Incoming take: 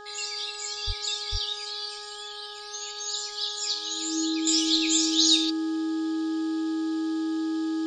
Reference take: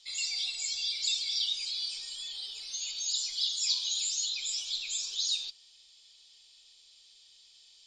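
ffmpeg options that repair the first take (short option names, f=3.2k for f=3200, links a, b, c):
-filter_complex "[0:a]bandreject=f=415.8:t=h:w=4,bandreject=f=831.6:t=h:w=4,bandreject=f=1.2474k:t=h:w=4,bandreject=f=1.6632k:t=h:w=4,bandreject=f=320:w=30,asplit=3[a][b][c];[a]afade=t=out:st=0.86:d=0.02[d];[b]highpass=f=140:w=0.5412,highpass=f=140:w=1.3066,afade=t=in:st=0.86:d=0.02,afade=t=out:st=0.98:d=0.02[e];[c]afade=t=in:st=0.98:d=0.02[f];[d][e][f]amix=inputs=3:normalize=0,asplit=3[g][h][i];[g]afade=t=out:st=1.31:d=0.02[j];[h]highpass=f=140:w=0.5412,highpass=f=140:w=1.3066,afade=t=in:st=1.31:d=0.02,afade=t=out:st=1.43:d=0.02[k];[i]afade=t=in:st=1.43:d=0.02[l];[j][k][l]amix=inputs=3:normalize=0,asetnsamples=n=441:p=0,asendcmd='4.47 volume volume -10dB',volume=0dB"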